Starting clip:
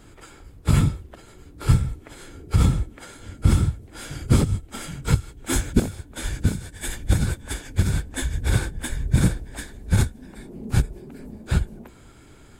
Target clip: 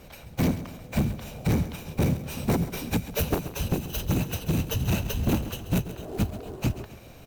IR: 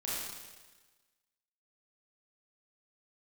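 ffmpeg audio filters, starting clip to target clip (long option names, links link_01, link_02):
-af "acrusher=bits=5:mode=log:mix=0:aa=0.000001,asoftclip=type=tanh:threshold=-18.5dB,aecho=1:1:234|468|702|936:0.2|0.0918|0.0422|0.0194,asetrate=76440,aresample=44100"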